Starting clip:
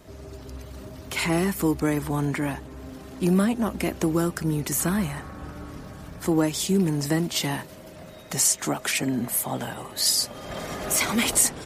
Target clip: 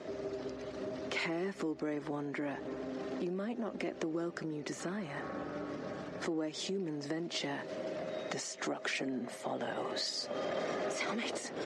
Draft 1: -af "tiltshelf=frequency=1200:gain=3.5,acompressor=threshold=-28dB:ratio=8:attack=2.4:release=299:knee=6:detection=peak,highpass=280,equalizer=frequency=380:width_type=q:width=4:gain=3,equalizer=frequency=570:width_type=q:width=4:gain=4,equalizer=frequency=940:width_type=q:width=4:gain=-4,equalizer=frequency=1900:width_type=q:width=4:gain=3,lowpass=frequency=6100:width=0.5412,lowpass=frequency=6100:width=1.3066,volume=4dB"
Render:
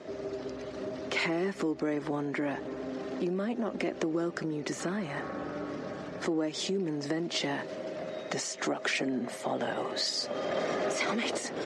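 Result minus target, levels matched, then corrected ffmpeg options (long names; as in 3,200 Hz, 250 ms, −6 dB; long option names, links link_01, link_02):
downward compressor: peak gain reduction −5.5 dB
-af "tiltshelf=frequency=1200:gain=3.5,acompressor=threshold=-34.5dB:ratio=8:attack=2.4:release=299:knee=6:detection=peak,highpass=280,equalizer=frequency=380:width_type=q:width=4:gain=3,equalizer=frequency=570:width_type=q:width=4:gain=4,equalizer=frequency=940:width_type=q:width=4:gain=-4,equalizer=frequency=1900:width_type=q:width=4:gain=3,lowpass=frequency=6100:width=0.5412,lowpass=frequency=6100:width=1.3066,volume=4dB"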